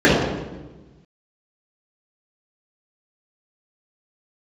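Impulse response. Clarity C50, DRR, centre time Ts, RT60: -0.5 dB, -10.0 dB, 78 ms, 1.2 s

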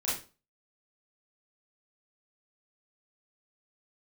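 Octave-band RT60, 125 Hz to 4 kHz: 0.40 s, 0.35 s, 0.35 s, 0.30 s, 0.30 s, 0.30 s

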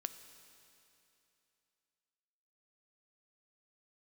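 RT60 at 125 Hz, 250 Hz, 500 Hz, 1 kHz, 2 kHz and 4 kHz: 2.9 s, 2.9 s, 2.9 s, 2.9 s, 2.9 s, 2.9 s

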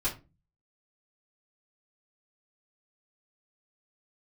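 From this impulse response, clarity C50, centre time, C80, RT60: 11.5 dB, 19 ms, 19.0 dB, 0.30 s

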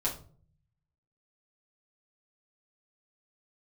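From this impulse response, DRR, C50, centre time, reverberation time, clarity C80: -6.0 dB, 10.5 dB, 19 ms, 0.45 s, 15.5 dB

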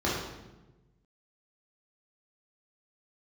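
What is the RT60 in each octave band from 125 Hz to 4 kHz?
1.7 s, 1.4 s, 1.3 s, 0.95 s, 0.85 s, 0.80 s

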